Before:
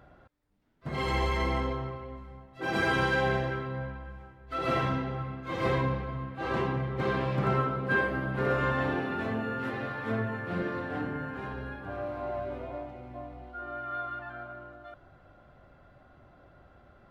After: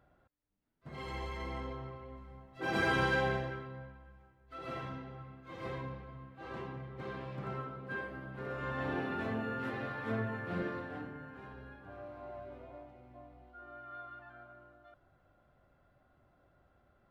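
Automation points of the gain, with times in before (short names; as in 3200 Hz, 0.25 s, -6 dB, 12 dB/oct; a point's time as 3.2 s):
1.39 s -12.5 dB
2.52 s -3.5 dB
3.15 s -3.5 dB
3.93 s -13.5 dB
8.51 s -13.5 dB
9 s -4.5 dB
10.65 s -4.5 dB
11.14 s -12 dB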